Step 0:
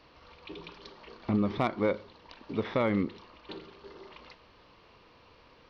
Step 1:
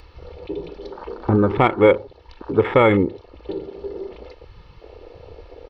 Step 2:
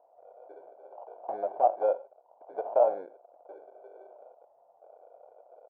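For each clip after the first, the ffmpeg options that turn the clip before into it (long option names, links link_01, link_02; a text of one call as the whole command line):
ffmpeg -i in.wav -filter_complex "[0:a]asplit=2[link_01][link_02];[link_02]acompressor=mode=upward:threshold=-35dB:ratio=2.5,volume=0dB[link_03];[link_01][link_03]amix=inputs=2:normalize=0,aecho=1:1:2.3:0.54,afwtdn=0.0178,volume=7dB" out.wav
ffmpeg -i in.wav -af "acrusher=samples=23:mix=1:aa=0.000001,asuperpass=centerf=680:order=4:qfactor=3.5,aecho=1:1:84:0.0708" out.wav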